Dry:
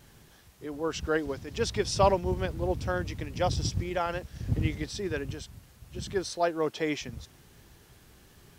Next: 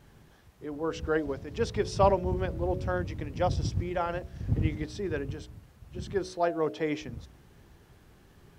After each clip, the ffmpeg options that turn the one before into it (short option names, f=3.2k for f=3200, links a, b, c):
-af "highshelf=f=2.6k:g=-11,bandreject=f=61.53:t=h:w=4,bandreject=f=123.06:t=h:w=4,bandreject=f=184.59:t=h:w=4,bandreject=f=246.12:t=h:w=4,bandreject=f=307.65:t=h:w=4,bandreject=f=369.18:t=h:w=4,bandreject=f=430.71:t=h:w=4,bandreject=f=492.24:t=h:w=4,bandreject=f=553.77:t=h:w=4,bandreject=f=615.3:t=h:w=4,bandreject=f=676.83:t=h:w=4,volume=1dB"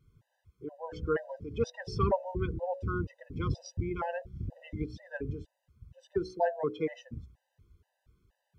-af "afftdn=nr=15:nf=-41,afftfilt=real='re*gt(sin(2*PI*2.1*pts/sr)*(1-2*mod(floor(b*sr/1024/510),2)),0)':imag='im*gt(sin(2*PI*2.1*pts/sr)*(1-2*mod(floor(b*sr/1024/510),2)),0)':win_size=1024:overlap=0.75"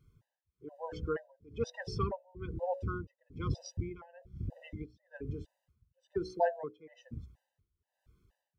-af "tremolo=f=1.1:d=0.94"